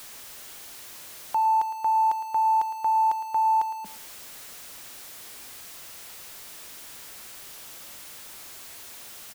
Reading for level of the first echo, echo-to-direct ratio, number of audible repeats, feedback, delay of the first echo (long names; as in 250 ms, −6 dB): −13.0 dB, −13.0 dB, 2, 23%, 110 ms